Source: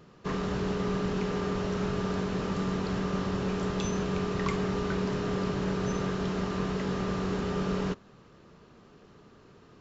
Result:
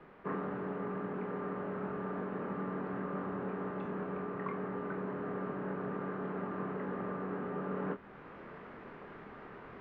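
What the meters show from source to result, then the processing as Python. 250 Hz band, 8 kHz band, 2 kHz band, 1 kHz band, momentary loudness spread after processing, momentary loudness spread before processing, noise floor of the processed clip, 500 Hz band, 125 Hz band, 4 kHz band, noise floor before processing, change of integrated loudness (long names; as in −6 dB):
−8.5 dB, can't be measured, −7.0 dB, −4.5 dB, 11 LU, 1 LU, −52 dBFS, −6.5 dB, −11.5 dB, below −20 dB, −56 dBFS, −8.0 dB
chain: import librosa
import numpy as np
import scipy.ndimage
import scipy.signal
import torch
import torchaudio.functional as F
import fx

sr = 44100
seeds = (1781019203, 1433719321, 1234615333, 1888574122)

p1 = scipy.signal.sosfilt(scipy.signal.butter(2, 220.0, 'highpass', fs=sr, output='sos'), x)
p2 = fx.quant_dither(p1, sr, seeds[0], bits=6, dither='triangular')
p3 = p1 + (p2 * 10.0 ** (-10.0 / 20.0))
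p4 = fx.rider(p3, sr, range_db=10, speed_s=0.5)
p5 = scipy.signal.sosfilt(scipy.signal.butter(4, 1800.0, 'lowpass', fs=sr, output='sos'), p4)
p6 = fx.doubler(p5, sr, ms=25.0, db=-7.5)
y = p6 * 10.0 ** (-7.5 / 20.0)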